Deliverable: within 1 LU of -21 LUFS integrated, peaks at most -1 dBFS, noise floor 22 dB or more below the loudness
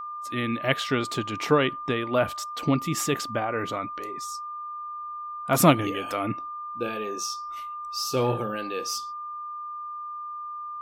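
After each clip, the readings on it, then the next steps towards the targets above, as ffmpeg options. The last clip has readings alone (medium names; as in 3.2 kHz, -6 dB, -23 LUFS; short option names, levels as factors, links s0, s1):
steady tone 1.2 kHz; tone level -33 dBFS; loudness -28.0 LUFS; peak level -4.5 dBFS; loudness target -21.0 LUFS
-> -af "bandreject=f=1200:w=30"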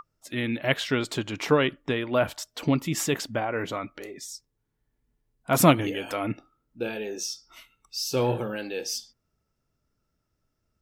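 steady tone not found; loudness -27.0 LUFS; peak level -4.5 dBFS; loudness target -21.0 LUFS
-> -af "volume=2,alimiter=limit=0.891:level=0:latency=1"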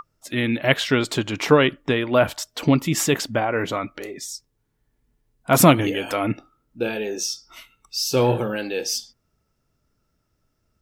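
loudness -21.5 LUFS; peak level -1.0 dBFS; noise floor -72 dBFS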